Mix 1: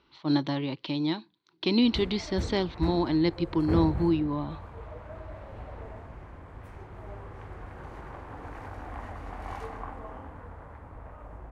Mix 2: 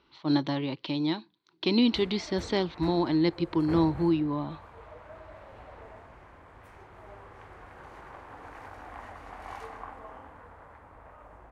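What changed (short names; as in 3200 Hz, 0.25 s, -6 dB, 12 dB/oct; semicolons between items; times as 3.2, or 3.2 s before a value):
speech: add low shelf 480 Hz +9.5 dB; master: add low shelf 360 Hz -11.5 dB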